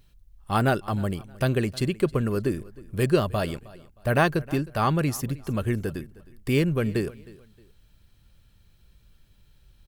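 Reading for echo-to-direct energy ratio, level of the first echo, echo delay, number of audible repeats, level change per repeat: −20.5 dB, −21.0 dB, 312 ms, 2, −10.5 dB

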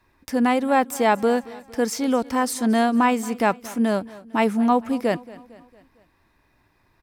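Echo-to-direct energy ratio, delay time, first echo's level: −18.5 dB, 227 ms, −20.0 dB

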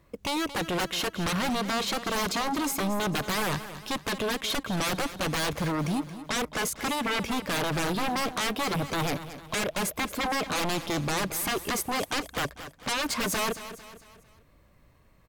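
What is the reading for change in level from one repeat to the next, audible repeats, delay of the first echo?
−7.0 dB, 4, 225 ms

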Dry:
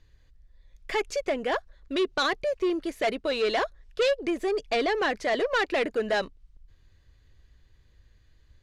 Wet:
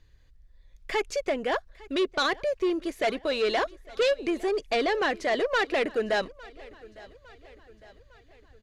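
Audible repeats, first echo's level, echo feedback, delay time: 3, −22.0 dB, 53%, 856 ms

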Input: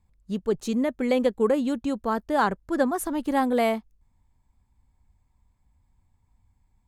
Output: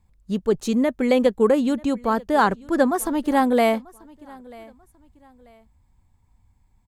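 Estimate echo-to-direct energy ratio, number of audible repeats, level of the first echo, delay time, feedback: −23.0 dB, 2, −23.5 dB, 939 ms, 32%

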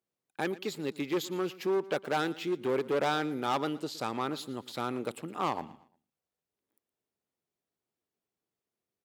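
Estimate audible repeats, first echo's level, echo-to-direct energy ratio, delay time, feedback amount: 2, −19.0 dB, −18.5 dB, 116 ms, 35%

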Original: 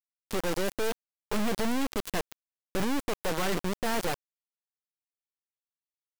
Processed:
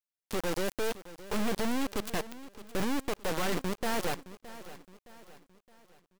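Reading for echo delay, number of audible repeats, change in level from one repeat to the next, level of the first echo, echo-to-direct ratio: 617 ms, 3, −7.0 dB, −16.0 dB, −15.0 dB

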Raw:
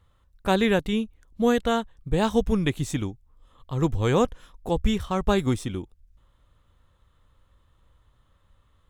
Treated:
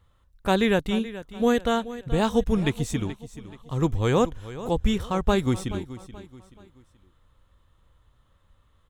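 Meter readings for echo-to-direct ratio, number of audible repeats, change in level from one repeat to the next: −14.5 dB, 3, −8.5 dB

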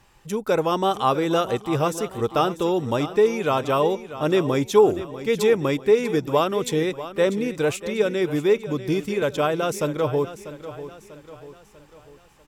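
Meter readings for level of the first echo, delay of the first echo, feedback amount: −13.5 dB, 643 ms, 46%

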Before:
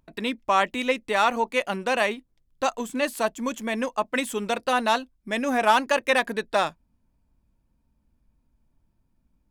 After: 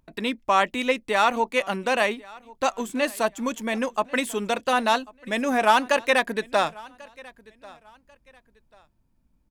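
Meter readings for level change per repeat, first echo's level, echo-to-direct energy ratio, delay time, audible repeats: −11.0 dB, −23.0 dB, −22.5 dB, 1,091 ms, 2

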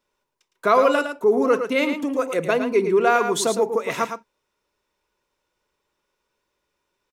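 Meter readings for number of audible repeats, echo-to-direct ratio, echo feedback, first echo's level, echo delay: 1, −8.0 dB, repeats not evenly spaced, −8.0 dB, 110 ms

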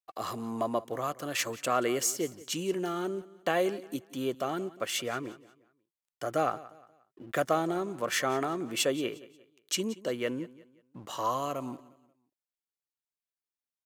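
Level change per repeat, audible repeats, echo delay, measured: −9.0 dB, 2, 178 ms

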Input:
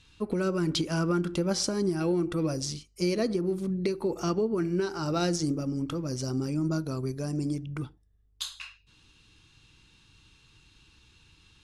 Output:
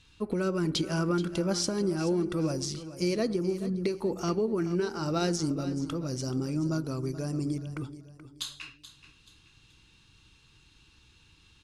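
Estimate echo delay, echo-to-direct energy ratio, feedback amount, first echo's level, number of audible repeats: 429 ms, −13.5 dB, 34%, −14.0 dB, 3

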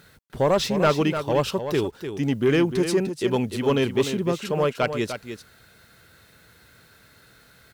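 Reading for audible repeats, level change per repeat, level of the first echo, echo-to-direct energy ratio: 1, repeats not evenly spaced, −9.0 dB, −9.0 dB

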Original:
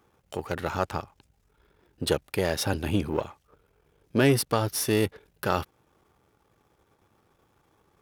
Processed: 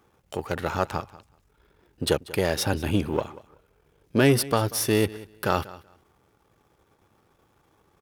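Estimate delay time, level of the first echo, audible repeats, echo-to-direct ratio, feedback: 189 ms, −19.0 dB, 2, −19.0 dB, 17%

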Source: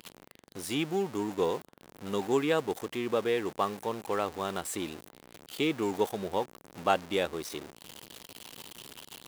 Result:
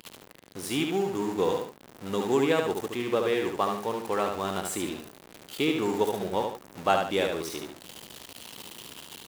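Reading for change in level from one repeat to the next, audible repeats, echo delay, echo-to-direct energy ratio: −9.0 dB, 2, 73 ms, −4.0 dB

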